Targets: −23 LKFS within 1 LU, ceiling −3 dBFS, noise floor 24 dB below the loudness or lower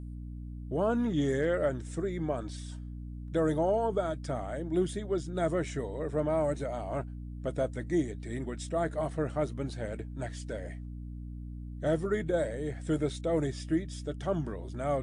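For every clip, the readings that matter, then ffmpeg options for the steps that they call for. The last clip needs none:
mains hum 60 Hz; hum harmonics up to 300 Hz; level of the hum −38 dBFS; integrated loudness −32.5 LKFS; sample peak −18.0 dBFS; target loudness −23.0 LKFS
→ -af "bandreject=frequency=60:width_type=h:width=4,bandreject=frequency=120:width_type=h:width=4,bandreject=frequency=180:width_type=h:width=4,bandreject=frequency=240:width_type=h:width=4,bandreject=frequency=300:width_type=h:width=4"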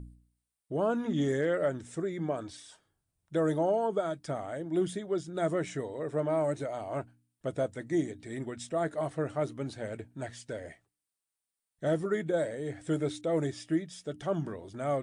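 mains hum none found; integrated loudness −33.0 LKFS; sample peak −18.5 dBFS; target loudness −23.0 LKFS
→ -af "volume=10dB"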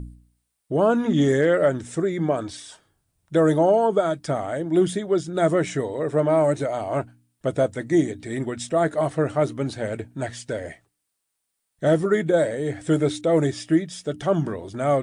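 integrated loudness −23.0 LKFS; sample peak −8.5 dBFS; background noise floor −78 dBFS

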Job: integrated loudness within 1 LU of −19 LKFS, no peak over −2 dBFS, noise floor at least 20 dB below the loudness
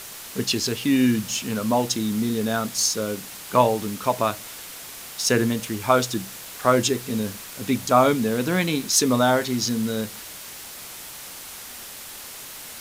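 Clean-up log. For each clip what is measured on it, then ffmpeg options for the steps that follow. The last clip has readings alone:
background noise floor −39 dBFS; target noise floor −43 dBFS; integrated loudness −22.5 LKFS; sample peak −3.5 dBFS; target loudness −19.0 LKFS
→ -af "afftdn=noise_reduction=6:noise_floor=-39"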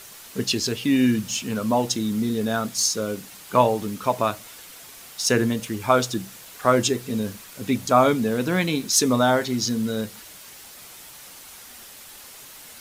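background noise floor −44 dBFS; integrated loudness −22.5 LKFS; sample peak −3.5 dBFS; target loudness −19.0 LKFS
→ -af "volume=3.5dB,alimiter=limit=-2dB:level=0:latency=1"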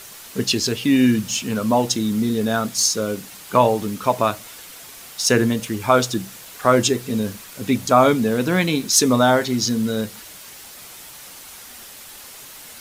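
integrated loudness −19.5 LKFS; sample peak −2.0 dBFS; background noise floor −40 dBFS

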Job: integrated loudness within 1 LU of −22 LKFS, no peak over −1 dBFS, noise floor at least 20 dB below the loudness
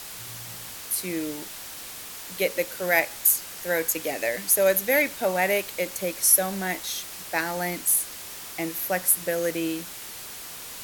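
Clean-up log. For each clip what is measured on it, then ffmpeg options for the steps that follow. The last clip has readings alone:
background noise floor −39 dBFS; target noise floor −44 dBFS; integrated loudness −24.0 LKFS; sample peak −6.0 dBFS; target loudness −22.0 LKFS
→ -af "afftdn=noise_reduction=6:noise_floor=-39"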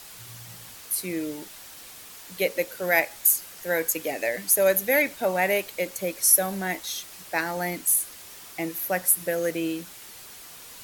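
background noise floor −45 dBFS; integrated loudness −24.5 LKFS; sample peak −6.0 dBFS; target loudness −22.0 LKFS
→ -af "volume=2.5dB"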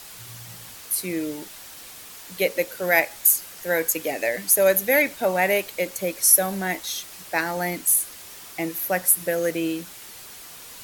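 integrated loudness −22.0 LKFS; sample peak −3.5 dBFS; background noise floor −42 dBFS

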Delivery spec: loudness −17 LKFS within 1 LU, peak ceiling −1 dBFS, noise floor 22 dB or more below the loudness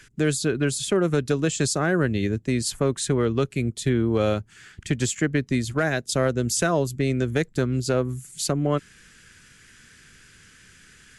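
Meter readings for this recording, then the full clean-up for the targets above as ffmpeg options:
integrated loudness −24.0 LKFS; sample peak −11.5 dBFS; target loudness −17.0 LKFS
→ -af "volume=7dB"

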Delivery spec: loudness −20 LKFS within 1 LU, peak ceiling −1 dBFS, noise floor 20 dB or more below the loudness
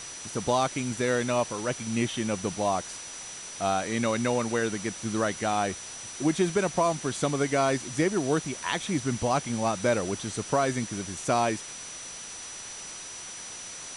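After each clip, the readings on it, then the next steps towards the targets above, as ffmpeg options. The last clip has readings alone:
interfering tone 5,900 Hz; level of the tone −41 dBFS; background noise floor −41 dBFS; target noise floor −49 dBFS; integrated loudness −28.5 LKFS; sample peak −12.5 dBFS; target loudness −20.0 LKFS
→ -af "bandreject=frequency=5900:width=30"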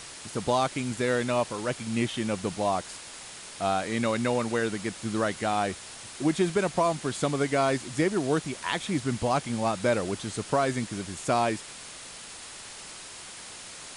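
interfering tone none found; background noise floor −44 dBFS; target noise floor −48 dBFS
→ -af "afftdn=noise_reduction=6:noise_floor=-44"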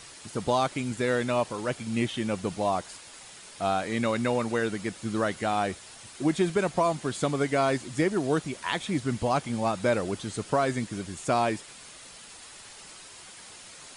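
background noise floor −48 dBFS; target noise floor −49 dBFS
→ -af "afftdn=noise_reduction=6:noise_floor=-48"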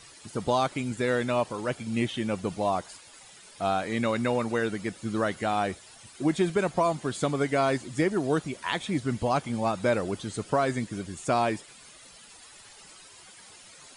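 background noise floor −51 dBFS; integrated loudness −28.5 LKFS; sample peak −12.5 dBFS; target loudness −20.0 LKFS
→ -af "volume=8.5dB"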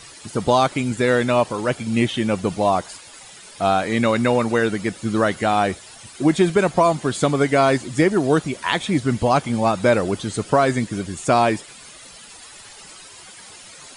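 integrated loudness −20.0 LKFS; sample peak −4.0 dBFS; background noise floor −43 dBFS

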